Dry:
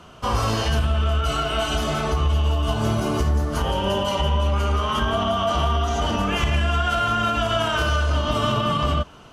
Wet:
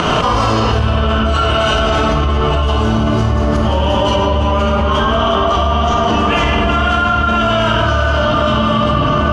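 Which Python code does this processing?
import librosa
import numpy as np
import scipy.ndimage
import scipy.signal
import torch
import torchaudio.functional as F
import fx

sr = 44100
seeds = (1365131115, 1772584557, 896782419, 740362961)

y = fx.low_shelf(x, sr, hz=110.0, db=-7.0)
y = fx.volume_shaper(y, sr, bpm=101, per_beat=1, depth_db=-13, release_ms=154.0, shape='slow start')
y = fx.air_absorb(y, sr, metres=86.0)
y = y + 10.0 ** (-14.5 / 20.0) * np.pad(y, (int(1183 * sr / 1000.0), 0))[:len(y)]
y = fx.room_shoebox(y, sr, seeds[0], volume_m3=170.0, walls='hard', distance_m=0.49)
y = fx.env_flatten(y, sr, amount_pct=100)
y = y * 10.0 ** (2.5 / 20.0)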